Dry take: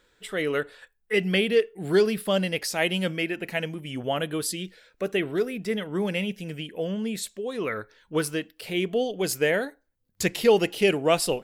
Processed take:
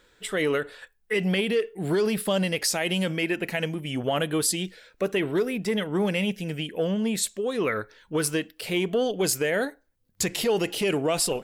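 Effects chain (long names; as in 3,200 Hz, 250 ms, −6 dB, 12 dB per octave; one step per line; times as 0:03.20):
brickwall limiter −19.5 dBFS, peak gain reduction 11 dB
dynamic equaliser 7,800 Hz, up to +4 dB, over −49 dBFS, Q 1.4
saturating transformer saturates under 310 Hz
level +4 dB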